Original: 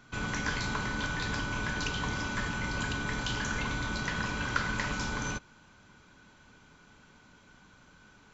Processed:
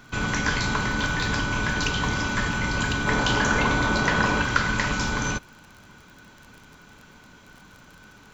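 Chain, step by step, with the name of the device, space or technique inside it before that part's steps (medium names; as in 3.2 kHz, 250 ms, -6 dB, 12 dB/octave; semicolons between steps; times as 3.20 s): vinyl LP (crackle 41 per s -45 dBFS; pink noise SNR 40 dB); 3.07–4.42 s: peaking EQ 590 Hz +7.5 dB 2.6 oct; trim +8 dB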